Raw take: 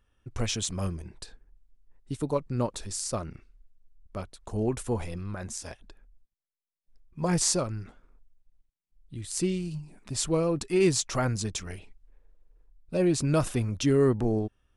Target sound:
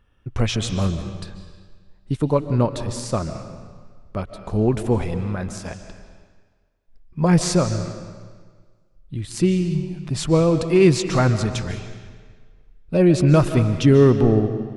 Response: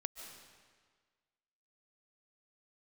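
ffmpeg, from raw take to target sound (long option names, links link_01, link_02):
-filter_complex "[0:a]equalizer=frequency=150:width=1.5:gain=4,asplit=2[link_01][link_02];[1:a]atrim=start_sample=2205,lowpass=4600[link_03];[link_02][link_03]afir=irnorm=-1:irlink=0,volume=6.5dB[link_04];[link_01][link_04]amix=inputs=2:normalize=0"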